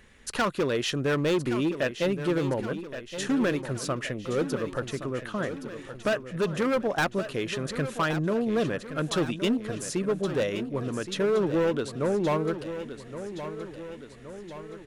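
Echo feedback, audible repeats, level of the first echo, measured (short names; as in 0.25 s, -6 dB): 55%, 5, -11.0 dB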